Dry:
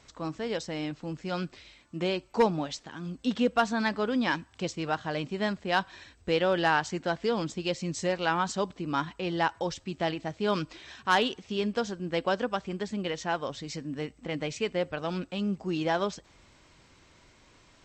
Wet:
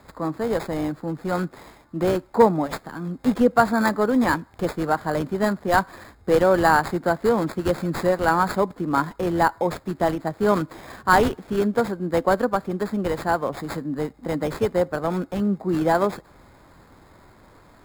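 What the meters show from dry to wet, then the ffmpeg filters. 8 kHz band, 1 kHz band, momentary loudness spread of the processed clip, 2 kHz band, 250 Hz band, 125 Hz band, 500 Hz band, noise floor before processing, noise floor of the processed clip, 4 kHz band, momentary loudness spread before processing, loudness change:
+3.0 dB, +8.5 dB, 10 LU, +5.5 dB, +8.0 dB, +7.5 dB, +8.5 dB, -60 dBFS, -53 dBFS, -3.0 dB, 10 LU, +7.5 dB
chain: -filter_complex "[0:a]acrossover=split=130|710|1900[s0][s1][s2][s3];[s0]acompressor=threshold=0.00112:ratio=6[s4];[s3]acrusher=samples=15:mix=1:aa=0.000001[s5];[s4][s1][s2][s5]amix=inputs=4:normalize=0,volume=2.66"

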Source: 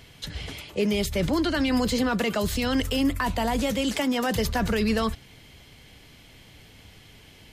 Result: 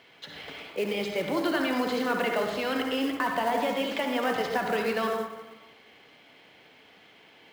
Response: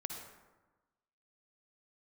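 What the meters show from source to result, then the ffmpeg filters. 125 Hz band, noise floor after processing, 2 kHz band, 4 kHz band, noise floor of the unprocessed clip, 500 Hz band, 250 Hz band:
-14.0 dB, -56 dBFS, 0.0 dB, -4.5 dB, -51 dBFS, -0.5 dB, -6.5 dB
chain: -filter_complex "[0:a]highpass=370,lowpass=3000[s0];[1:a]atrim=start_sample=2205[s1];[s0][s1]afir=irnorm=-1:irlink=0,acrusher=bits=5:mode=log:mix=0:aa=0.000001,volume=1.19"

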